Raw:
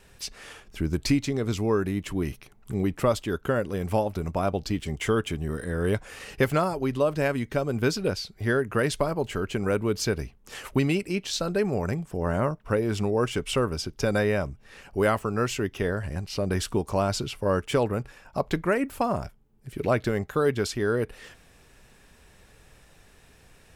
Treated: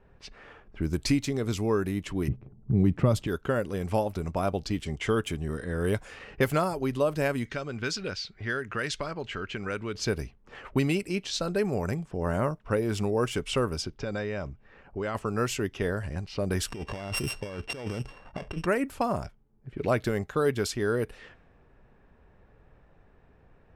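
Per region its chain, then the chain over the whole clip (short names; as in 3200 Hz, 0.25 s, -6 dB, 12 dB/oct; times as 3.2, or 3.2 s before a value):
2.28–3.27 low-pass opened by the level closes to 460 Hz, open at -19.5 dBFS + bell 130 Hz +14.5 dB 2.5 oct + compressor 1.5:1, threshold -23 dBFS
7.45–9.95 band shelf 3100 Hz +8.5 dB 2.9 oct + compressor 1.5:1, threshold -39 dBFS
13.97–15.15 elliptic low-pass 7800 Hz + compressor 3:1, threshold -27 dBFS
16.68–18.66 sample sorter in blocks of 16 samples + bell 2200 Hz -3.5 dB 1.3 oct + negative-ratio compressor -32 dBFS
whole clip: low-pass opened by the level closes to 1100 Hz, open at -23 dBFS; high shelf 7900 Hz +5 dB; gain -2 dB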